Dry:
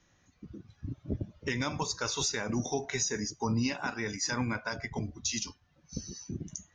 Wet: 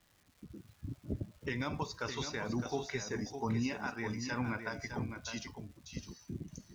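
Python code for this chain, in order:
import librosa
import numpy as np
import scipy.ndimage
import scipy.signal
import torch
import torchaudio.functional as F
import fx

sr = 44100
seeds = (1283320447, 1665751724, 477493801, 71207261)

y = scipy.ndimage.gaussian_filter1d(x, 1.8, mode='constant')
y = fx.dmg_crackle(y, sr, seeds[0], per_s=470.0, level_db=-51.0)
y = y + 10.0 ** (-8.0 / 20.0) * np.pad(y, (int(609 * sr / 1000.0), 0))[:len(y)]
y = y * 10.0 ** (-4.0 / 20.0)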